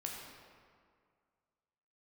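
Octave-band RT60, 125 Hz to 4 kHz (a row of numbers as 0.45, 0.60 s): 2.0, 2.1, 2.0, 2.1, 1.7, 1.2 s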